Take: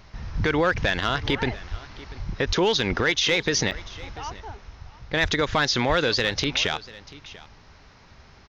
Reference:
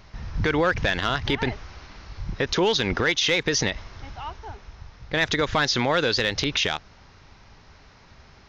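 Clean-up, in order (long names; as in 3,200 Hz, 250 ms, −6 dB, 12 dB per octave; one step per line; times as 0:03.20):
high-pass at the plosives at 0:01.70/0:02.46/0:05.22/0:05.88
repair the gap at 0:03.71, 5.7 ms
echo removal 690 ms −19.5 dB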